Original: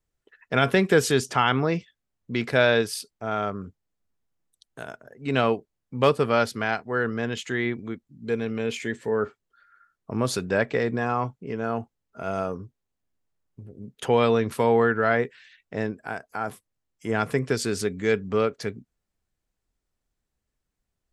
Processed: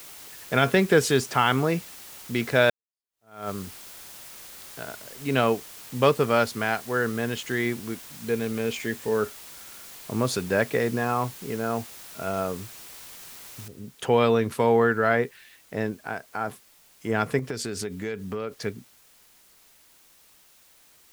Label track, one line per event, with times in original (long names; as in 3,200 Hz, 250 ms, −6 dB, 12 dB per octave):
2.700000	3.500000	fade in exponential
13.680000	13.680000	noise floor change −44 dB −57 dB
17.390000	18.520000	downward compressor, threshold −27 dBFS